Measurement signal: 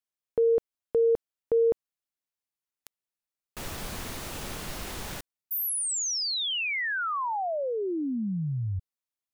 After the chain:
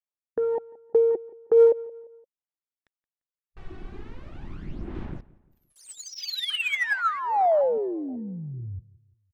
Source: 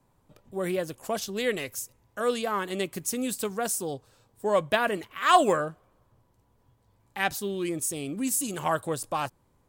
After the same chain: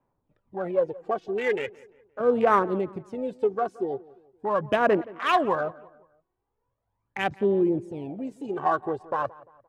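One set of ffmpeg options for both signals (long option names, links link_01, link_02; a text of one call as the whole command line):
ffmpeg -i in.wav -filter_complex "[0:a]afwtdn=0.0251,bass=frequency=250:gain=-7,treble=frequency=4000:gain=-14,asplit=2[link_01][link_02];[link_02]acompressor=threshold=-38dB:ratio=6:attack=47:release=29,volume=-3dB[link_03];[link_01][link_03]amix=inputs=2:normalize=0,aphaser=in_gain=1:out_gain=1:delay=2.7:decay=0.6:speed=0.4:type=sinusoidal,adynamicsmooth=sensitivity=6.5:basefreq=4400,asplit=2[link_04][link_05];[link_05]adelay=173,lowpass=frequency=2400:poles=1,volume=-20.5dB,asplit=2[link_06][link_07];[link_07]adelay=173,lowpass=frequency=2400:poles=1,volume=0.42,asplit=2[link_08][link_09];[link_09]adelay=173,lowpass=frequency=2400:poles=1,volume=0.42[link_10];[link_06][link_08][link_10]amix=inputs=3:normalize=0[link_11];[link_04][link_11]amix=inputs=2:normalize=0" out.wav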